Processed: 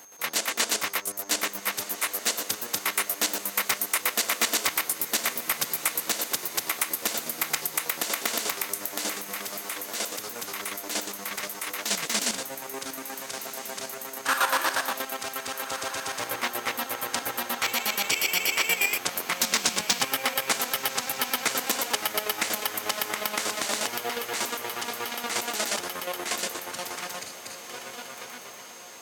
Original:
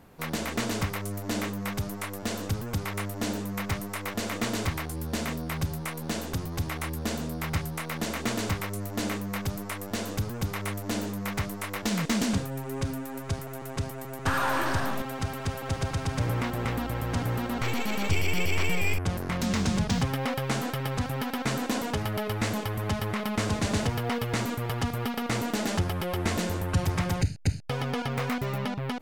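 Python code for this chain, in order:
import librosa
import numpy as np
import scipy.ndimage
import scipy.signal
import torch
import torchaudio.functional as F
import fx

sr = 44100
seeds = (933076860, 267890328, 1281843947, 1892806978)

y = fx.fade_out_tail(x, sr, length_s=3.23)
y = scipy.signal.sosfilt(scipy.signal.butter(2, 330.0, 'highpass', fs=sr, output='sos'), y)
y = fx.tilt_eq(y, sr, slope=3.0)
y = fx.chopper(y, sr, hz=8.4, depth_pct=65, duty_pct=40)
y = y + 10.0 ** (-54.0 / 20.0) * np.sin(2.0 * np.pi * 6400.0 * np.arange(len(y)) / sr)
y = fx.echo_diffused(y, sr, ms=1434, feedback_pct=61, wet_db=-13.0)
y = y * librosa.db_to_amplitude(5.0)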